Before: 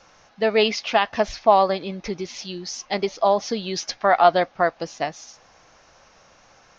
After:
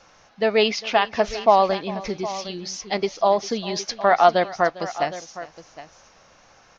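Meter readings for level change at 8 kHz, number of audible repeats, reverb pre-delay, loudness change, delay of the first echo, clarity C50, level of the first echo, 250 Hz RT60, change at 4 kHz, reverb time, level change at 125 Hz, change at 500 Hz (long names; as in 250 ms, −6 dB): can't be measured, 2, no reverb audible, 0.0 dB, 402 ms, no reverb audible, −18.5 dB, no reverb audible, 0.0 dB, no reverb audible, 0.0 dB, +0.5 dB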